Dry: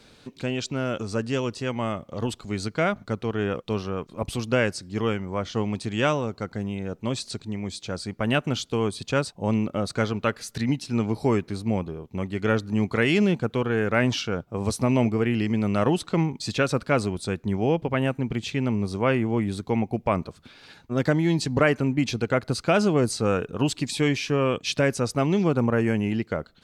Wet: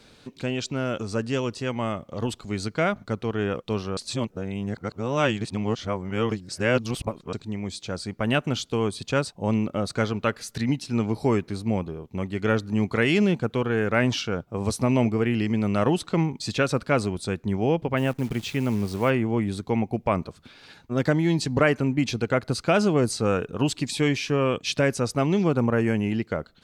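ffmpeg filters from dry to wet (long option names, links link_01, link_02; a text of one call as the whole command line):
ffmpeg -i in.wav -filter_complex "[0:a]asplit=3[link_01][link_02][link_03];[link_01]afade=type=out:start_time=17.96:duration=0.02[link_04];[link_02]acrusher=bits=8:dc=4:mix=0:aa=0.000001,afade=type=in:start_time=17.96:duration=0.02,afade=type=out:start_time=19.09:duration=0.02[link_05];[link_03]afade=type=in:start_time=19.09:duration=0.02[link_06];[link_04][link_05][link_06]amix=inputs=3:normalize=0,asplit=3[link_07][link_08][link_09];[link_07]atrim=end=3.972[link_10];[link_08]atrim=start=3.968:end=7.332,asetpts=PTS-STARTPTS,areverse[link_11];[link_09]atrim=start=7.328[link_12];[link_10][link_11]acrossfade=duration=0.004:curve1=hsin:curve2=hsin[link_13];[link_13][link_12]acrossfade=duration=0.004:curve1=hsin:curve2=hsin" out.wav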